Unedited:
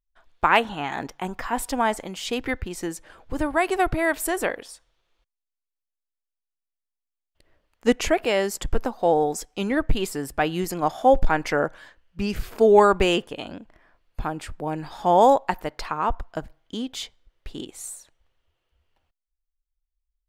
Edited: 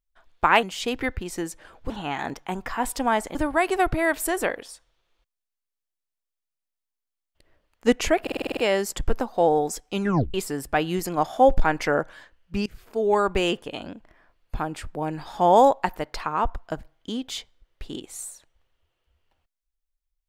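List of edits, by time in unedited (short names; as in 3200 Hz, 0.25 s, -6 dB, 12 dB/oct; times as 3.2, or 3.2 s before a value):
2.08–3.35 move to 0.63
8.22 stutter 0.05 s, 8 plays
9.66 tape stop 0.33 s
12.31–13.4 fade in, from -21 dB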